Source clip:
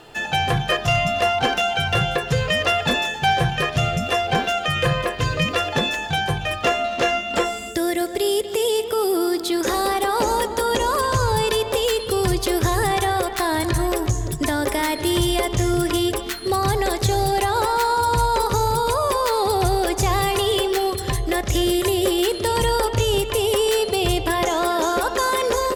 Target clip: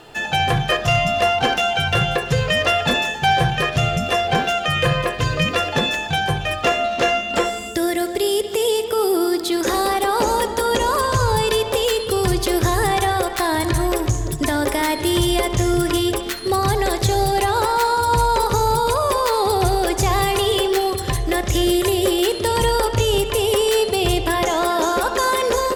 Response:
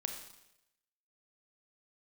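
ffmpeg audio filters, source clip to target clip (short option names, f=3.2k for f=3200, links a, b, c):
-filter_complex "[0:a]asplit=2[a][b];[1:a]atrim=start_sample=2205,lowpass=6.6k,adelay=68[c];[b][c]afir=irnorm=-1:irlink=0,volume=-14dB[d];[a][d]amix=inputs=2:normalize=0,volume=1.5dB"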